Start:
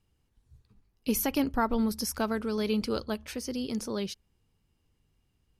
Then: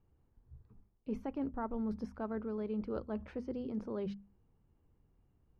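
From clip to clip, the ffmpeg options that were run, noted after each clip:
ffmpeg -i in.wav -af "lowpass=1100,bandreject=frequency=50:width_type=h:width=6,bandreject=frequency=100:width_type=h:width=6,bandreject=frequency=150:width_type=h:width=6,bandreject=frequency=200:width_type=h:width=6,bandreject=frequency=250:width_type=h:width=6,areverse,acompressor=threshold=-39dB:ratio=4,areverse,volume=2.5dB" out.wav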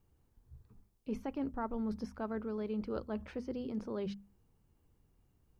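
ffmpeg -i in.wav -af "highshelf=frequency=2600:gain=9.5" out.wav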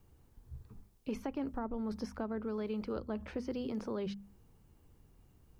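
ffmpeg -i in.wav -filter_complex "[0:a]acrossover=split=420|860[link_01][link_02][link_03];[link_01]acompressor=threshold=-46dB:ratio=4[link_04];[link_02]acompressor=threshold=-52dB:ratio=4[link_05];[link_03]acompressor=threshold=-57dB:ratio=4[link_06];[link_04][link_05][link_06]amix=inputs=3:normalize=0,volume=7.5dB" out.wav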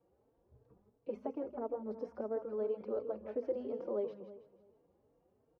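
ffmpeg -i in.wav -filter_complex "[0:a]bandpass=frequency=530:width_type=q:width=2.6:csg=0,aecho=1:1:162|324|486|648|810:0.316|0.136|0.0585|0.0251|0.0108,asplit=2[link_01][link_02];[link_02]adelay=3.9,afreqshift=2.9[link_03];[link_01][link_03]amix=inputs=2:normalize=1,volume=8.5dB" out.wav

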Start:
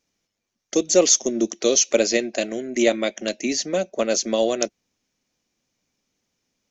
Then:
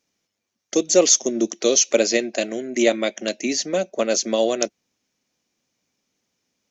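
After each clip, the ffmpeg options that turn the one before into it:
ffmpeg -i in.wav -af "highpass=frequency=110:poles=1,volume=1dB" out.wav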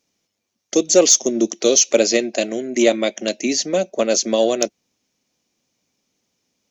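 ffmpeg -i in.wav -af "equalizer=frequency=1600:width=1.5:gain=-4,asoftclip=type=tanh:threshold=-3dB,volume=3.5dB" out.wav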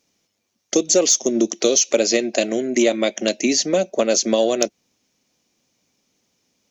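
ffmpeg -i in.wav -af "acompressor=threshold=-18dB:ratio=3,volume=3.5dB" out.wav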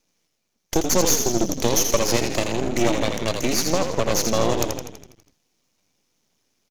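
ffmpeg -i in.wav -filter_complex "[0:a]aphaser=in_gain=1:out_gain=1:delay=2.7:decay=0.21:speed=1.9:type=sinusoidal,asplit=9[link_01][link_02][link_03][link_04][link_05][link_06][link_07][link_08][link_09];[link_02]adelay=82,afreqshift=-37,volume=-6dB[link_10];[link_03]adelay=164,afreqshift=-74,volume=-10.6dB[link_11];[link_04]adelay=246,afreqshift=-111,volume=-15.2dB[link_12];[link_05]adelay=328,afreqshift=-148,volume=-19.7dB[link_13];[link_06]adelay=410,afreqshift=-185,volume=-24.3dB[link_14];[link_07]adelay=492,afreqshift=-222,volume=-28.9dB[link_15];[link_08]adelay=574,afreqshift=-259,volume=-33.5dB[link_16];[link_09]adelay=656,afreqshift=-296,volume=-38.1dB[link_17];[link_01][link_10][link_11][link_12][link_13][link_14][link_15][link_16][link_17]amix=inputs=9:normalize=0,aeval=exprs='max(val(0),0)':channel_layout=same" out.wav

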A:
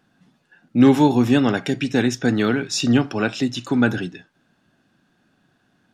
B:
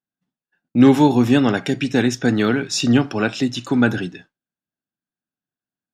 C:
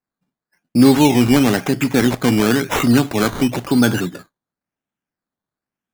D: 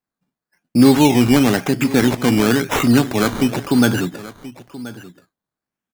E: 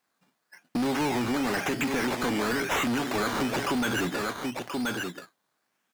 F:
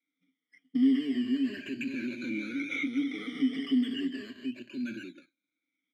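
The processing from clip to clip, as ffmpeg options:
ffmpeg -i in.wav -af "agate=range=-33dB:threshold=-40dB:ratio=3:detection=peak,volume=1.5dB" out.wav
ffmpeg -i in.wav -filter_complex "[0:a]asplit=2[link_01][link_02];[link_02]alimiter=limit=-12dB:level=0:latency=1:release=21,volume=1dB[link_03];[link_01][link_03]amix=inputs=2:normalize=0,acrusher=samples=13:mix=1:aa=0.000001:lfo=1:lforange=7.8:lforate=0.97,volume=-2.5dB" out.wav
ffmpeg -i in.wav -af "aecho=1:1:1029:0.141" out.wav
ffmpeg -i in.wav -filter_complex "[0:a]acompressor=threshold=-22dB:ratio=6,asplit=2[link_01][link_02];[link_02]highpass=frequency=720:poles=1,volume=26dB,asoftclip=type=tanh:threshold=-14dB[link_03];[link_01][link_03]amix=inputs=2:normalize=0,lowpass=frequency=7700:poles=1,volume=-6dB,volume=-6.5dB" out.wav
ffmpeg -i in.wav -filter_complex "[0:a]afftfilt=real='re*pow(10,20/40*sin(2*PI*(1.4*log(max(b,1)*sr/1024/100)/log(2)-(-0.35)*(pts-256)/sr)))':imag='im*pow(10,20/40*sin(2*PI*(1.4*log(max(b,1)*sr/1024/100)/log(2)-(-0.35)*(pts-256)/sr)))':win_size=1024:overlap=0.75,asplit=3[link_01][link_02][link_03];[link_01]bandpass=frequency=270:width_type=q:width=8,volume=0dB[link_04];[link_02]bandpass=frequency=2290:width_type=q:width=8,volume=-6dB[link_05];[link_03]bandpass=frequency=3010:width_type=q:width=8,volume=-9dB[link_06];[link_04][link_05][link_06]amix=inputs=3:normalize=0" out.wav

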